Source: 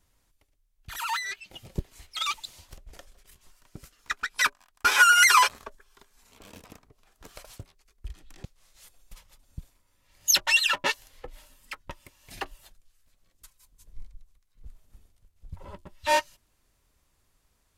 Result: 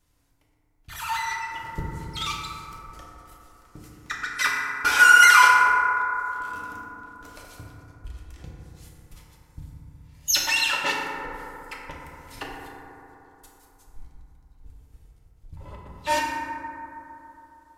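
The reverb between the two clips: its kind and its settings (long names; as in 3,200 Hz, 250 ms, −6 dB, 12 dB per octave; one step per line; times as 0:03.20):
feedback delay network reverb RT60 3.4 s, high-frequency decay 0.25×, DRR −4 dB
level −2.5 dB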